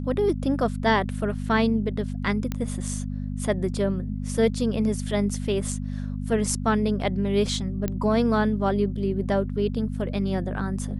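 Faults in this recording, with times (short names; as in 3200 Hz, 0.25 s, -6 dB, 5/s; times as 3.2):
hum 50 Hz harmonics 5 -30 dBFS
2.52 pop -15 dBFS
7.88 pop -14 dBFS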